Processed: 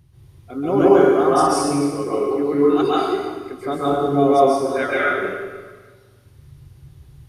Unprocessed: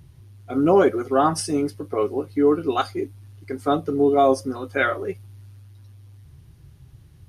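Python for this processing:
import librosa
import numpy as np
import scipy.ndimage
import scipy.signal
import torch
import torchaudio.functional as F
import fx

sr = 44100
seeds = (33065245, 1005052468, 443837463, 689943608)

y = fx.rev_plate(x, sr, seeds[0], rt60_s=1.5, hf_ratio=0.9, predelay_ms=120, drr_db=-8.5)
y = y * 10.0 ** (-5.5 / 20.0)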